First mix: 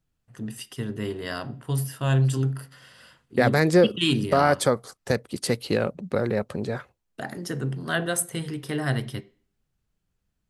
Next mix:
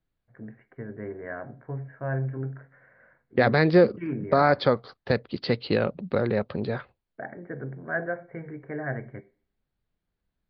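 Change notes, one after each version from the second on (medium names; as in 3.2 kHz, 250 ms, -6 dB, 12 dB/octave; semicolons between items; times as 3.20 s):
first voice: add rippled Chebyshev low-pass 2.3 kHz, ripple 9 dB; second voice: add steep low-pass 4.7 kHz 72 dB/octave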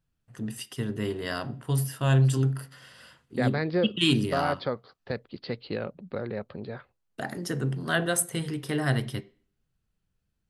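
first voice: remove rippled Chebyshev low-pass 2.3 kHz, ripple 9 dB; second voice -8.5 dB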